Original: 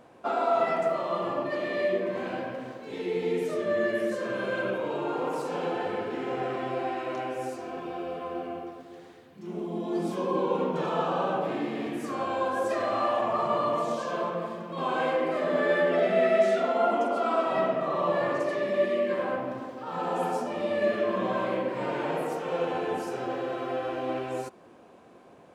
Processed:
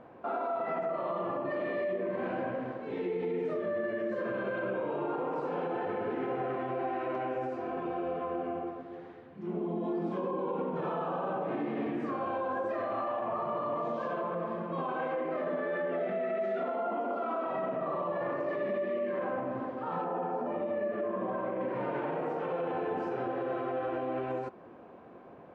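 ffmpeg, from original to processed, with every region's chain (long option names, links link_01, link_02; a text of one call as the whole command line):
ffmpeg -i in.wav -filter_complex "[0:a]asettb=1/sr,asplit=3[link_01][link_02][link_03];[link_01]atrim=end=20.044[link_04];[link_02]atrim=start=20.04:end=21.61,asetpts=PTS-STARTPTS,afade=type=in:duration=0.004:curve=qsin,afade=type=out:start_time=1.566:duration=0.004:curve=qsin,lowpass=frequency=1300:poles=1,lowshelf=frequency=130:gain=-7[link_05];[link_03]atrim=start=21.606[link_06];[link_04][link_05]acrossfade=duration=0.004:curve1=hsin:curve2=qsin[link_07];[link_07][link_06]acrossfade=duration=0.004:curve1=qsin:curve2=hsin,lowpass=1900,acompressor=threshold=-32dB:ratio=2,alimiter=level_in=3.5dB:limit=-24dB:level=0:latency=1:release=38,volume=-3.5dB,volume=2dB" out.wav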